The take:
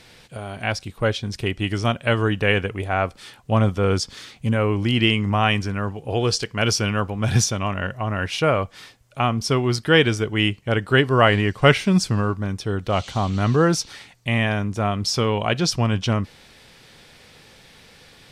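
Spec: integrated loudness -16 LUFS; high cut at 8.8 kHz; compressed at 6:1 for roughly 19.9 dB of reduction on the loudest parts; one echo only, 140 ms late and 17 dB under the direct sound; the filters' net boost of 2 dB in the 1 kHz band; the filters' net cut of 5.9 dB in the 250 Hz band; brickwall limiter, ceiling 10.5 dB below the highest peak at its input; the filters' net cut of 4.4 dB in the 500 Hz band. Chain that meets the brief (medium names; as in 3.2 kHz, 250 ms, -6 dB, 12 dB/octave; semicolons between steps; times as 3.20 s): low-pass 8.8 kHz; peaking EQ 250 Hz -7.5 dB; peaking EQ 500 Hz -4.5 dB; peaking EQ 1 kHz +4.5 dB; compression 6:1, threshold -32 dBFS; peak limiter -27 dBFS; delay 140 ms -17 dB; trim +22 dB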